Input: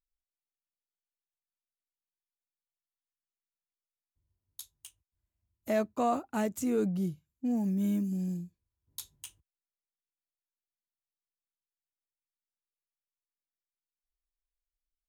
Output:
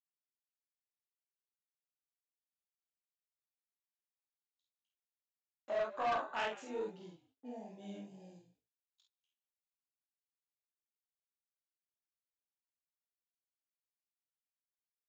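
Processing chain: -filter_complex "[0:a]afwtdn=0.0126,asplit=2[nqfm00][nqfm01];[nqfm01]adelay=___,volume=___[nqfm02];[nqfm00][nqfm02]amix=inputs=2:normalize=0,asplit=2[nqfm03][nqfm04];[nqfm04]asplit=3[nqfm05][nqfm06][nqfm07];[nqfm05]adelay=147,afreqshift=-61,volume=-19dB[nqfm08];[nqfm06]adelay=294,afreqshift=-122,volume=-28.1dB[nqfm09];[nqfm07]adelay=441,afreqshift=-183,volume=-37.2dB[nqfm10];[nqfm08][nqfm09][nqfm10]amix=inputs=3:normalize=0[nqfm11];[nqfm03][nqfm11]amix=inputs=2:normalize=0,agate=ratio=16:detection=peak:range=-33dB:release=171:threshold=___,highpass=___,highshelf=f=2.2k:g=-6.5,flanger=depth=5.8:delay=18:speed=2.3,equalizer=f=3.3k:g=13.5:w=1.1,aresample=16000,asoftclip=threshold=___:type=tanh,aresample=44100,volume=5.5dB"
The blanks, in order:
49, -2dB, -53dB, 930, -35dB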